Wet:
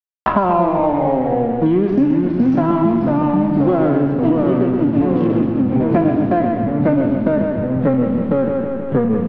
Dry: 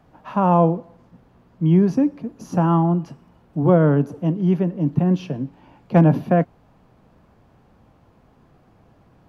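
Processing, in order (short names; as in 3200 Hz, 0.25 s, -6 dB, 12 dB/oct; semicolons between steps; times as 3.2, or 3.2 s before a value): spectral trails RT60 0.42 s; high shelf 3500 Hz +5.5 dB; notch 920 Hz, Q 17; comb 3 ms, depth 75%; in parallel at -0.5 dB: compressor, threshold -27 dBFS, peak gain reduction 16 dB; on the sum: backlash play -22 dBFS; air absorption 320 m; feedback echo 0.127 s, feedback 40%, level -6 dB; echoes that change speed 0.18 s, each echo -2 st, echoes 3; three-band squash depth 100%; gain -1 dB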